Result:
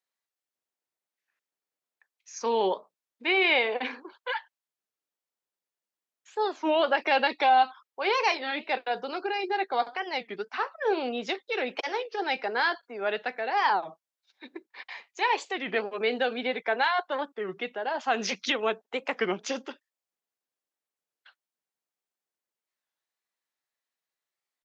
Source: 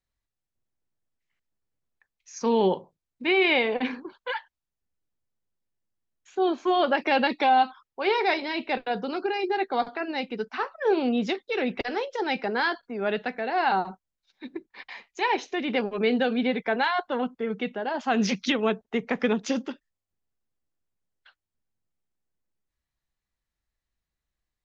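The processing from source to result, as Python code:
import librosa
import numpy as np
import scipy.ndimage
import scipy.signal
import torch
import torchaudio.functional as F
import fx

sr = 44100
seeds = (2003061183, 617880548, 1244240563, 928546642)

y = scipy.signal.sosfilt(scipy.signal.butter(2, 460.0, 'highpass', fs=sr, output='sos'), x)
y = fx.record_warp(y, sr, rpm=33.33, depth_cents=250.0)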